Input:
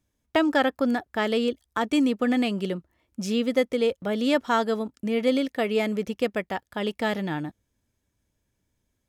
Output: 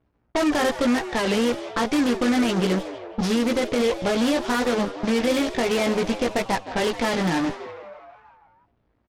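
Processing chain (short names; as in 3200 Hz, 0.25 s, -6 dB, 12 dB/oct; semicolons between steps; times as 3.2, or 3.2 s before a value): CVSD 32 kbps; doubler 17 ms -3 dB; limiter -20.5 dBFS, peak gain reduction 11.5 dB; added harmonics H 8 -15 dB, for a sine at -20.5 dBFS; frequency-shifting echo 0.164 s, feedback 65%, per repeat +99 Hz, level -14 dB; low-pass opened by the level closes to 1500 Hz, open at -25 dBFS; record warp 33 1/3 rpm, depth 160 cents; gain +6 dB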